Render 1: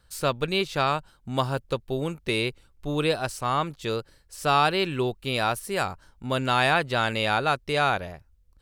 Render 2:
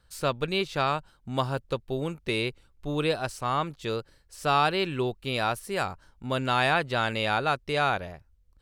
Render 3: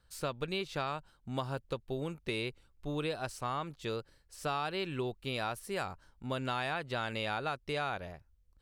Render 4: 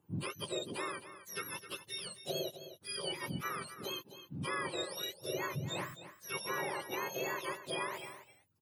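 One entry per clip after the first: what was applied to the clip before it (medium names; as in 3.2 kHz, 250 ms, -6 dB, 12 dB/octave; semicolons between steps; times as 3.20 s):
treble shelf 7.8 kHz -5 dB; trim -2 dB
compression 5:1, threshold -26 dBFS, peak gain reduction 8 dB; trim -5 dB
spectrum inverted on a logarithmic axis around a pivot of 1.2 kHz; delay 261 ms -12.5 dB; trim -1 dB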